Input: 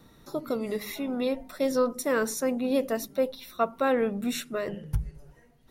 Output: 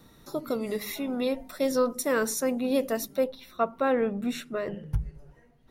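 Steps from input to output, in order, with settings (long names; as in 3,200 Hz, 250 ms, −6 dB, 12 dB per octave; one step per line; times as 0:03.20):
high-shelf EQ 4,400 Hz +3.5 dB, from 0:03.24 −9.5 dB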